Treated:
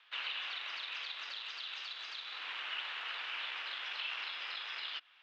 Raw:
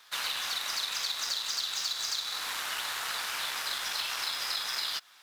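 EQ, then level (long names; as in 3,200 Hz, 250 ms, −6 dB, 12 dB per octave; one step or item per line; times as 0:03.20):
Chebyshev high-pass filter 280 Hz, order 8
transistor ladder low-pass 3,200 Hz, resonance 60%
+1.0 dB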